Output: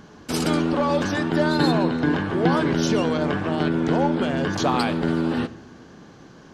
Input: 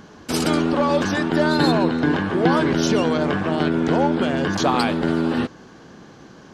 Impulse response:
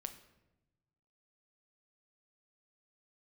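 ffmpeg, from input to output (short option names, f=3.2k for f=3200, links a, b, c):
-filter_complex "[0:a]asplit=2[a][b];[1:a]atrim=start_sample=2205,asetrate=42336,aresample=44100,lowshelf=f=180:g=5.5[c];[b][c]afir=irnorm=-1:irlink=0,volume=0.5dB[d];[a][d]amix=inputs=2:normalize=0,volume=-7.5dB"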